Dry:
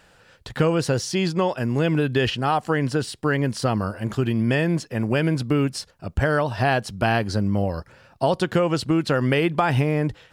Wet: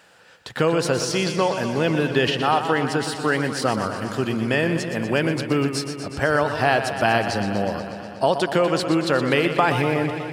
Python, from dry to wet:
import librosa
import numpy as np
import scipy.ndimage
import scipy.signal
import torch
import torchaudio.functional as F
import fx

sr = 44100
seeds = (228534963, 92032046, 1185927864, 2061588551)

y = scipy.signal.sosfilt(scipy.signal.butter(2, 81.0, 'highpass', fs=sr, output='sos'), x)
y = fx.low_shelf(y, sr, hz=170.0, db=-12.0)
y = fx.echo_warbled(y, sr, ms=122, feedback_pct=76, rate_hz=2.8, cents=68, wet_db=-9.5)
y = y * 10.0 ** (2.5 / 20.0)